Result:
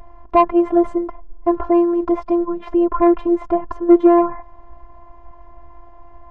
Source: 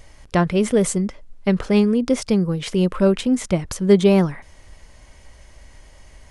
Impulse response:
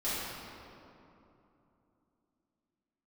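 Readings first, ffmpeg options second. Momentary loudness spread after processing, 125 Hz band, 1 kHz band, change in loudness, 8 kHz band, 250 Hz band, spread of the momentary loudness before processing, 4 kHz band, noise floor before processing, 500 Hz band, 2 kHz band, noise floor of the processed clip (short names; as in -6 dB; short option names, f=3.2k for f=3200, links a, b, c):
10 LU, under -20 dB, +11.0 dB, +2.5 dB, under -30 dB, +2.5 dB, 9 LU, under -15 dB, -48 dBFS, +2.5 dB, n/a, -42 dBFS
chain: -af "lowpass=f=940:t=q:w=4.1,afftfilt=real='hypot(re,im)*cos(PI*b)':imag='0':win_size=512:overlap=0.75,acontrast=83"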